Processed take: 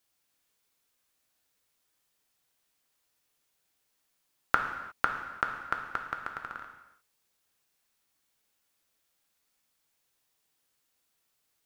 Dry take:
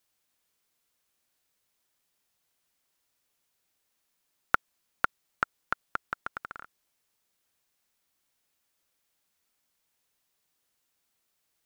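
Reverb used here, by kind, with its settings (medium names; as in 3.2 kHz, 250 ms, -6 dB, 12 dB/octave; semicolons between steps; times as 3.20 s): gated-style reverb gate 380 ms falling, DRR 3 dB; trim -1 dB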